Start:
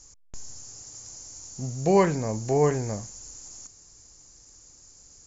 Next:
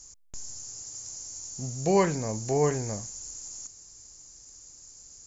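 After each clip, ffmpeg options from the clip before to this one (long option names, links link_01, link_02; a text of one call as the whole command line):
ffmpeg -i in.wav -af "highshelf=frequency=4800:gain=9,volume=-3dB" out.wav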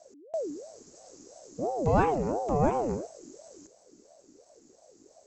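ffmpeg -i in.wav -af "bass=frequency=250:gain=11,treble=frequency=4000:gain=-13,aeval=exprs='val(0)*sin(2*PI*470*n/s+470*0.4/2.9*sin(2*PI*2.9*n/s))':channel_layout=same,volume=-2dB" out.wav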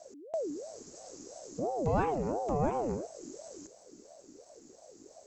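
ffmpeg -i in.wav -af "acompressor=threshold=-43dB:ratio=1.5,volume=3dB" out.wav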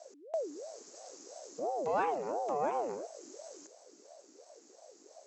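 ffmpeg -i in.wav -af "highpass=490,lowpass=7000,volume=1dB" out.wav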